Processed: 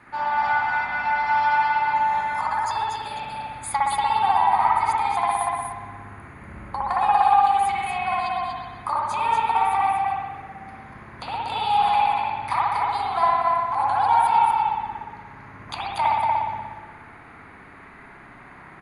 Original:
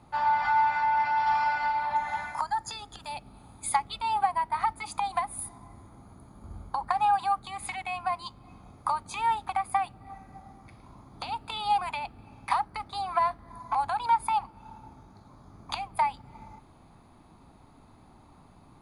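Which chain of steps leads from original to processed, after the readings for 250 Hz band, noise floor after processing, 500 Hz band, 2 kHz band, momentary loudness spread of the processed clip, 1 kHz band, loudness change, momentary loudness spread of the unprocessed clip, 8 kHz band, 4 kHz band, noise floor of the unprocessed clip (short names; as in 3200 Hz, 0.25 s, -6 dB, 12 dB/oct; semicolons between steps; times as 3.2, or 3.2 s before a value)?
+7.0 dB, -45 dBFS, +8.5 dB, +7.5 dB, 18 LU, +7.5 dB, +7.0 dB, 16 LU, +1.5 dB, +5.0 dB, -56 dBFS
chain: low shelf 82 Hz -9.5 dB; on a send: echo 0.238 s -4.5 dB; on the sum: band noise 950–2200 Hz -54 dBFS; bell 410 Hz +4 dB 0.64 oct; spring tank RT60 1.3 s, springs 59 ms, chirp 75 ms, DRR -5 dB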